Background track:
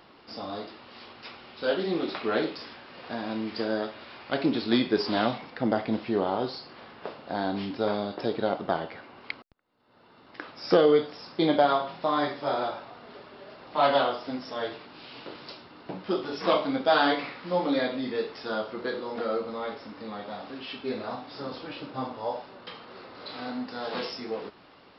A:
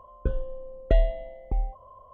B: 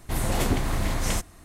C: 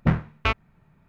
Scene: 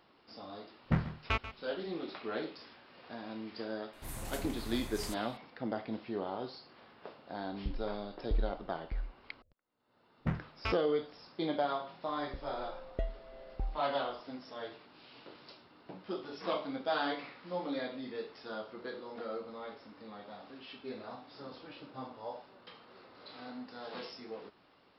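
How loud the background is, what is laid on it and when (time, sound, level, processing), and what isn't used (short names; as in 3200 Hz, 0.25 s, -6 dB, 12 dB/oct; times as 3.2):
background track -11 dB
0.85 add C -9 dB + echo 0.138 s -13.5 dB
3.93 add B -17.5 dB + high shelf 8400 Hz +9 dB
7.4 add A -10.5 dB + Gaussian blur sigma 25 samples
10.2 add C -13 dB
12.08 add A -7 dB + tremolo 1.4 Hz, depth 86%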